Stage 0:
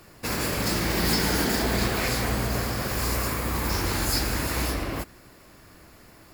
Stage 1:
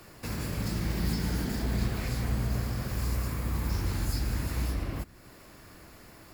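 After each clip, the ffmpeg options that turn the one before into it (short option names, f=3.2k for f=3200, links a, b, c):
-filter_complex "[0:a]acrossover=split=210[a][b];[b]acompressor=threshold=-48dB:ratio=2[c];[a][c]amix=inputs=2:normalize=0"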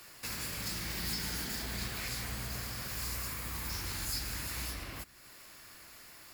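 -af "tiltshelf=f=970:g=-8.5,volume=-4.5dB"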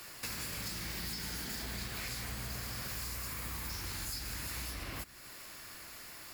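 -af "acompressor=threshold=-41dB:ratio=6,volume=4dB"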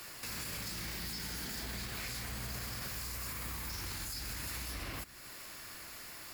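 -af "alimiter=level_in=8.5dB:limit=-24dB:level=0:latency=1:release=13,volume=-8.5dB,volume=1dB"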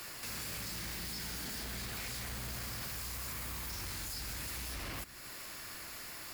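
-af "aeval=exprs='0.0126*(abs(mod(val(0)/0.0126+3,4)-2)-1)':c=same,volume=2dB"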